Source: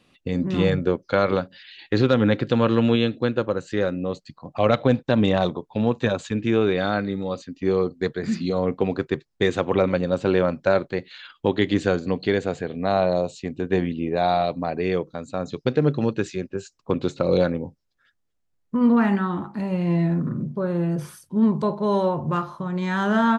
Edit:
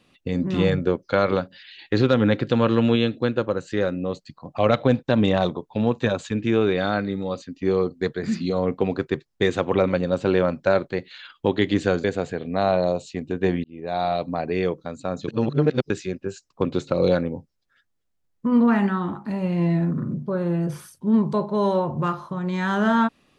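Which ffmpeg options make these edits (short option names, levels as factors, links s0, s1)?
-filter_complex "[0:a]asplit=5[s0][s1][s2][s3][s4];[s0]atrim=end=12.042[s5];[s1]atrim=start=12.328:end=13.93,asetpts=PTS-STARTPTS,afade=t=out:st=1.598:d=0.004:c=hsin[s6];[s2]atrim=start=13.93:end=15.572,asetpts=PTS-STARTPTS,afade=t=in:d=0.81:c=qsin[s7];[s3]atrim=start=15.568:end=16.192,asetpts=PTS-STARTPTS,areverse[s8];[s4]atrim=start=16.188[s9];[s6][s7]concat=n=2:v=0:a=1[s10];[s5][s10]acrossfade=d=0.004:c1=hsin:c2=hsin[s11];[s11][s8]acrossfade=d=0.004:c1=hsin:c2=hsin[s12];[s12][s9]acrossfade=d=0.004:c1=hsin:c2=hsin"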